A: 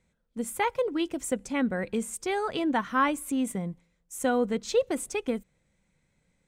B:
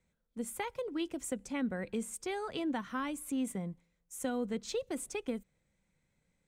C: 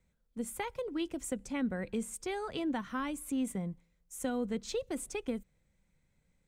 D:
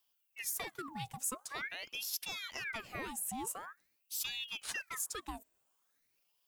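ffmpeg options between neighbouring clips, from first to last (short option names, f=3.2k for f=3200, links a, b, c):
-filter_complex "[0:a]acrossover=split=310|3000[a][b][c];[b]acompressor=threshold=-30dB:ratio=6[d];[a][d][c]amix=inputs=3:normalize=0,volume=-6dB"
-af "lowshelf=f=92:g=9"
-af "aemphasis=mode=production:type=bsi,aeval=exprs='val(0)*sin(2*PI*1800*n/s+1800*0.75/0.46*sin(2*PI*0.46*n/s))':c=same,volume=-2dB"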